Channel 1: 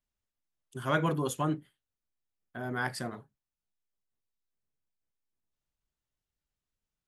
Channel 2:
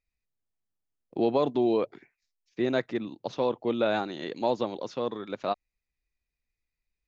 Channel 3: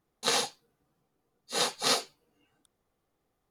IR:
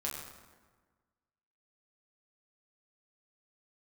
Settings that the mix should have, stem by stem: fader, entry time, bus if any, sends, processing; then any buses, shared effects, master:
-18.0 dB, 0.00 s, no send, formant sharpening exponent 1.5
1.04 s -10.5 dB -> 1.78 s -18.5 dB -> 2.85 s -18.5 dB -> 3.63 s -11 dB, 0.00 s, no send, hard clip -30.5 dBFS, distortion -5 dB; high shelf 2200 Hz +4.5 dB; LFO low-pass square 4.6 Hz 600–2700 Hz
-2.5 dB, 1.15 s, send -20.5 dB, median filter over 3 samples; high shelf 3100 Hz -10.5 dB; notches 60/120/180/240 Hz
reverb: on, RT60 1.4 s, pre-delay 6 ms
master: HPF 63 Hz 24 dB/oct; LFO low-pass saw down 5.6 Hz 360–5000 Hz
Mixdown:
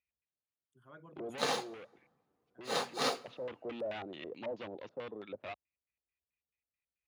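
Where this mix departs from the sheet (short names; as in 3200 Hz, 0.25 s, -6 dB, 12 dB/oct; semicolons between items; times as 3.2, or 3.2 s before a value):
stem 1 -18.0 dB -> -27.0 dB; master: missing LFO low-pass saw down 5.6 Hz 360–5000 Hz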